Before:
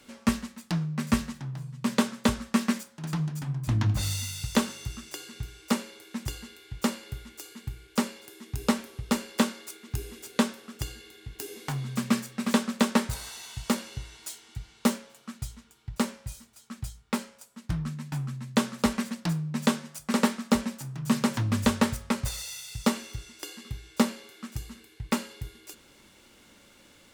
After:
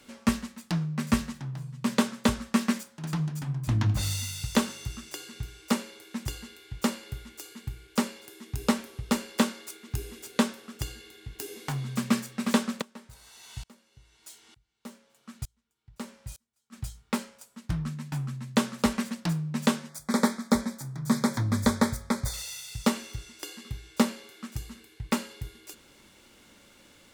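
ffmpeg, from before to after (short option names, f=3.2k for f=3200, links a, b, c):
-filter_complex "[0:a]asplit=3[a][b][c];[a]afade=t=out:st=12.8:d=0.02[d];[b]aeval=exprs='val(0)*pow(10,-31*if(lt(mod(-1.1*n/s,1),2*abs(-1.1)/1000),1-mod(-1.1*n/s,1)/(2*abs(-1.1)/1000),(mod(-1.1*n/s,1)-2*abs(-1.1)/1000)/(1-2*abs(-1.1)/1000))/20)':c=same,afade=t=in:st=12.8:d=0.02,afade=t=out:st=16.72:d=0.02[e];[c]afade=t=in:st=16.72:d=0.02[f];[d][e][f]amix=inputs=3:normalize=0,asettb=1/sr,asplit=3[g][h][i];[g]atrim=end=19.894[j];[h]atrim=start=19.89:end=22.34,asetpts=PTS-STARTPTS,afade=t=in:d=0.004:c=qsin,afade=t=out:st=2.446:d=0.004:c=qsin,asuperstop=centerf=2800:order=4:qfactor=2.4[k];[i]atrim=start=22.336[l];[j][k]acrossfade=d=0.004:c1=hsin:c2=qsin[m];[m][l]acrossfade=d=0.004:c1=qsin:c2=hsin"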